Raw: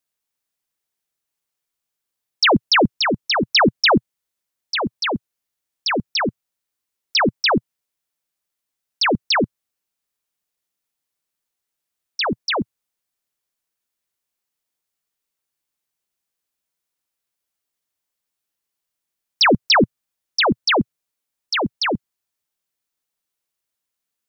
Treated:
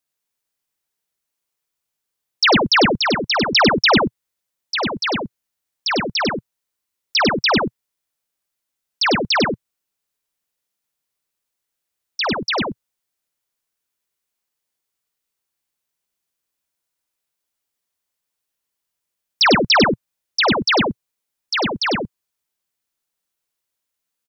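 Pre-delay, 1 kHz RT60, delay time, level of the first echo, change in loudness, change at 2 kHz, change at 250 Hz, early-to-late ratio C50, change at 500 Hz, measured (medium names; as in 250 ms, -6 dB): no reverb, no reverb, 50 ms, -16.5 dB, +1.0 dB, +1.5 dB, +1.0 dB, no reverb, +1.5 dB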